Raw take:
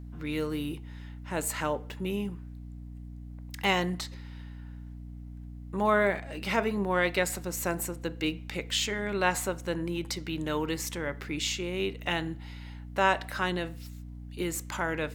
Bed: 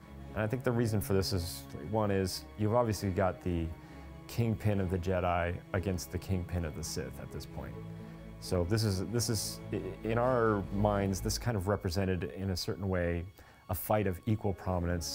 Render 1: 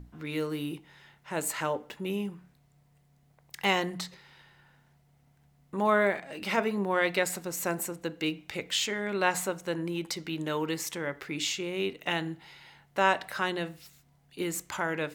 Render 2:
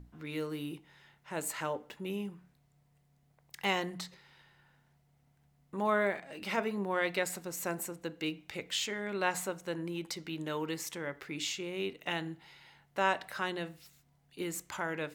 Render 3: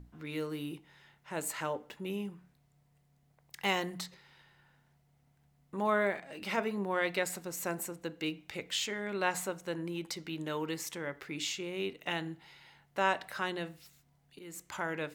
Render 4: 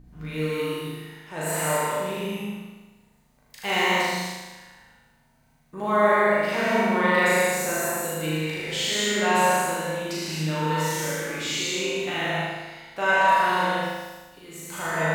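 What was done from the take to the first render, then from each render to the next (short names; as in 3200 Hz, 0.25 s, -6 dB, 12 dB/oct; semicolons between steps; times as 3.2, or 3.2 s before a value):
notches 60/120/180/240/300 Hz
gain -5 dB
3.65–4.06 high shelf 9000 Hz +6.5 dB; 14.39–14.8 fade in, from -17.5 dB
flutter echo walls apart 6.6 m, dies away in 1.2 s; non-linear reverb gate 0.29 s flat, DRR -6 dB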